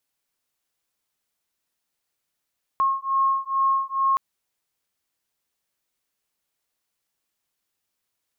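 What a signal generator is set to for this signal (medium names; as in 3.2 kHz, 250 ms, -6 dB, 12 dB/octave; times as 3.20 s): beating tones 1.08 kHz, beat 2.3 Hz, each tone -22.5 dBFS 1.37 s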